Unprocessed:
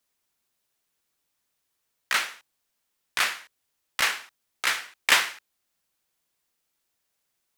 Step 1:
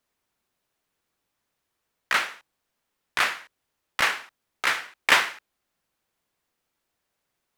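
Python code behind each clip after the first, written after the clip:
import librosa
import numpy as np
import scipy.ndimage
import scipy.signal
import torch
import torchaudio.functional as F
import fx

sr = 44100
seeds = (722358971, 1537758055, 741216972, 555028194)

y = fx.high_shelf(x, sr, hz=3000.0, db=-10.5)
y = y * librosa.db_to_amplitude(5.0)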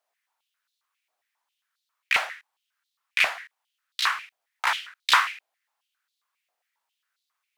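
y = fx.filter_held_highpass(x, sr, hz=7.4, low_hz=690.0, high_hz=3900.0)
y = y * librosa.db_to_amplitude(-4.0)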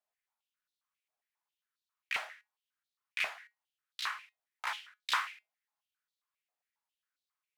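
y = fx.comb_fb(x, sr, f0_hz=210.0, decay_s=0.18, harmonics='all', damping=0.0, mix_pct=50)
y = y * librosa.db_to_amplitude(-8.0)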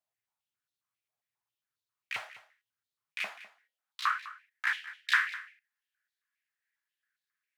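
y = fx.filter_sweep_highpass(x, sr, from_hz=110.0, to_hz=1700.0, start_s=3.0, end_s=4.23, q=6.2)
y = y + 10.0 ** (-16.5 / 20.0) * np.pad(y, (int(203 * sr / 1000.0), 0))[:len(y)]
y = y * librosa.db_to_amplitude(-2.0)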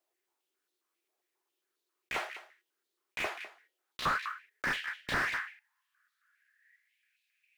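y = fx.block_float(x, sr, bits=7)
y = fx.filter_sweep_highpass(y, sr, from_hz=360.0, to_hz=2500.0, start_s=4.32, end_s=7.13, q=8.0)
y = fx.slew_limit(y, sr, full_power_hz=30.0)
y = y * librosa.db_to_amplitude(5.5)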